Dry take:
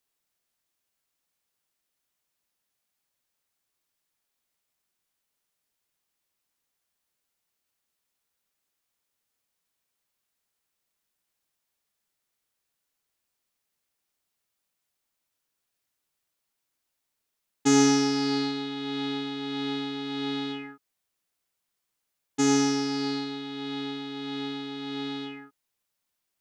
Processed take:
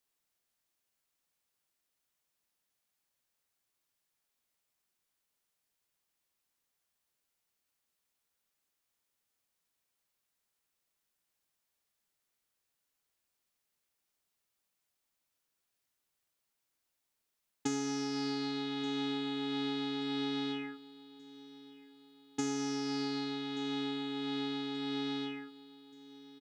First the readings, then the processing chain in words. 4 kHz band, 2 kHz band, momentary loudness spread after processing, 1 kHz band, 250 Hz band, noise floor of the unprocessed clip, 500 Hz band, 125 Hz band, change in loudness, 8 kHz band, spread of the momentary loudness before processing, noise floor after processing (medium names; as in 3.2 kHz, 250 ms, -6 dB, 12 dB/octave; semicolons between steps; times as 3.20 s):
-6.5 dB, -8.0 dB, 19 LU, -8.5 dB, -8.0 dB, -82 dBFS, -8.5 dB, -9.0 dB, -8.5 dB, -13.5 dB, 13 LU, -84 dBFS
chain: compression 16:1, threshold -29 dBFS, peak gain reduction 14.5 dB; feedback delay 1180 ms, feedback 47%, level -20.5 dB; trim -2.5 dB